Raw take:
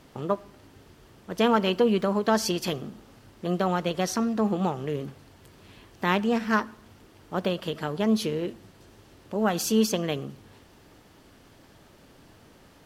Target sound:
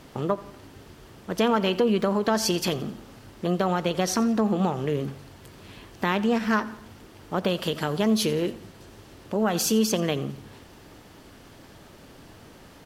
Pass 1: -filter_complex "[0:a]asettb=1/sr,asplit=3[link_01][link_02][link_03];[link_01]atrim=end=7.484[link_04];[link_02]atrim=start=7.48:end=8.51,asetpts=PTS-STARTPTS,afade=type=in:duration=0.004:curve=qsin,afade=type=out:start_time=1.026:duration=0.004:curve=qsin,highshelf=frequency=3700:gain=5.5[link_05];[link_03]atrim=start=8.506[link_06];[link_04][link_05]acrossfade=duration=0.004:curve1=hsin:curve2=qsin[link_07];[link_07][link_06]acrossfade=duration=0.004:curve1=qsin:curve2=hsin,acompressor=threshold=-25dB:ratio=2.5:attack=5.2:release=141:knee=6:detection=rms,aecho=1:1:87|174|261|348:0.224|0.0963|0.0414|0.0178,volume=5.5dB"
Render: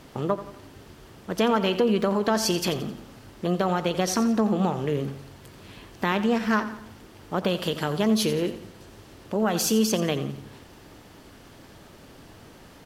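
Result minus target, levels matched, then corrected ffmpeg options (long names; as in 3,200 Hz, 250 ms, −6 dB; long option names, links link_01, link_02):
echo-to-direct +6 dB
-filter_complex "[0:a]asettb=1/sr,asplit=3[link_01][link_02][link_03];[link_01]atrim=end=7.484[link_04];[link_02]atrim=start=7.48:end=8.51,asetpts=PTS-STARTPTS,afade=type=in:duration=0.004:curve=qsin,afade=type=out:start_time=1.026:duration=0.004:curve=qsin,highshelf=frequency=3700:gain=5.5[link_05];[link_03]atrim=start=8.506[link_06];[link_04][link_05]acrossfade=duration=0.004:curve1=hsin:curve2=qsin[link_07];[link_07][link_06]acrossfade=duration=0.004:curve1=qsin:curve2=hsin,acompressor=threshold=-25dB:ratio=2.5:attack=5.2:release=141:knee=6:detection=rms,aecho=1:1:87|174|261:0.112|0.0482|0.0207,volume=5.5dB"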